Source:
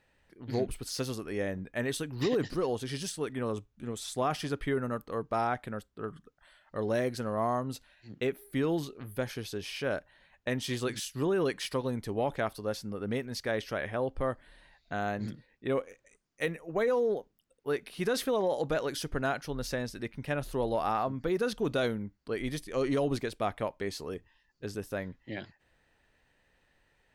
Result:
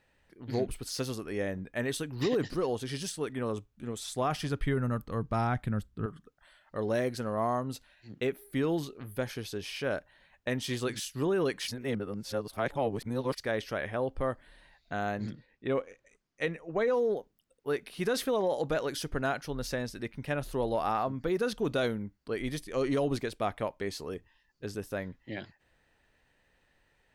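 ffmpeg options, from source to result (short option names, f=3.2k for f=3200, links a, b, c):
-filter_complex "[0:a]asettb=1/sr,asplit=3[a][b][c];[a]atrim=end=4.064[d];[b]atrim=start=4.06:end=6.06,asetpts=PTS-STARTPTS,afade=t=in:d=0.004:c=qsin,afade=t=out:st=1.996:d=0.004:c=qsin,asubboost=boost=10:cutoff=200[e];[c]atrim=start=6.056[f];[d][e]acrossfade=d=0.004:c1=hsin:c2=qsin[g];[g][f]acrossfade=d=0.004:c1=qsin:c2=hsin,asettb=1/sr,asplit=3[h][i][j];[h]atrim=end=15.274[k];[i]atrim=start=15.27:end=16.94,asetpts=PTS-STARTPTS,afade=t=in:d=0.004:c=qsin,afade=t=out:st=1.666:d=0.004:c=qsin,lowpass=6.1k[l];[j]atrim=start=16.936[m];[k][l]acrossfade=d=0.004:c1=hsin:c2=qsin[n];[n][m]acrossfade=d=0.004:c1=qsin:c2=hsin,asplit=3[o][p][q];[o]atrim=end=11.682[r];[p]atrim=start=11.678:end=13.382,asetpts=PTS-STARTPTS,areverse[s];[q]atrim=start=13.378[t];[r][s]acrossfade=d=0.004:c1=hsin:c2=hsin[u];[u][t]acrossfade=d=0.004:c1=hsin:c2=hsin"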